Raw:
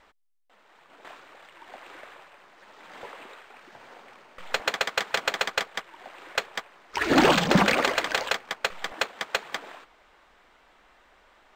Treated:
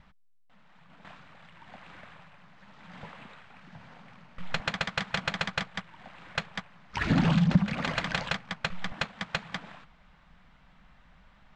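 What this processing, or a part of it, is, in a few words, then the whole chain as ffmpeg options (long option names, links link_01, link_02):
jukebox: -af "lowpass=5400,lowshelf=frequency=250:width_type=q:width=3:gain=13.5,acompressor=threshold=-18dB:ratio=4,volume=-3.5dB"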